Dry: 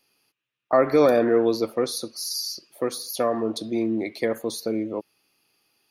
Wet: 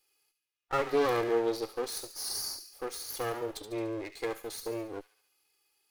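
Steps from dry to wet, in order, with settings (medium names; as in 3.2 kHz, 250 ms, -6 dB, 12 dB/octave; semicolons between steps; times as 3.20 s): comb filter that takes the minimum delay 2.4 ms; treble shelf 5.4 kHz +4.5 dB; harmonic-percussive split percussive -5 dB; bass shelf 320 Hz -9 dB; feedback echo behind a high-pass 71 ms, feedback 54%, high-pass 2.3 kHz, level -9 dB; warped record 45 rpm, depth 100 cents; trim -5 dB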